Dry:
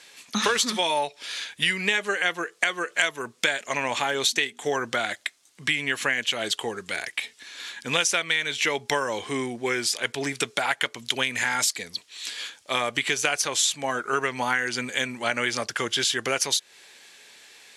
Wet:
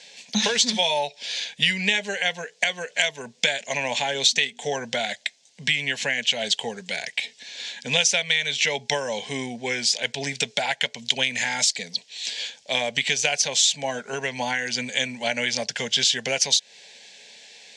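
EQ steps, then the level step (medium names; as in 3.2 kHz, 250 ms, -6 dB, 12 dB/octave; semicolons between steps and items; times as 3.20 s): low-pass 7 kHz 24 dB/octave; dynamic bell 410 Hz, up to -5 dB, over -41 dBFS, Q 0.78; static phaser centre 330 Hz, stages 6; +6.0 dB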